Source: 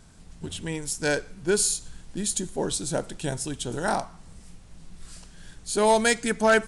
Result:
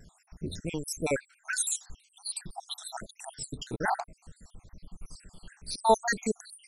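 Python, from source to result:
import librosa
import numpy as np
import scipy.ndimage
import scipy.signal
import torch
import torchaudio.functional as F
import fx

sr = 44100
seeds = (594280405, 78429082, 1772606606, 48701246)

y = fx.spec_dropout(x, sr, seeds[0], share_pct=77)
y = fx.vibrato_shape(y, sr, shape='saw_down', rate_hz=6.0, depth_cents=100.0)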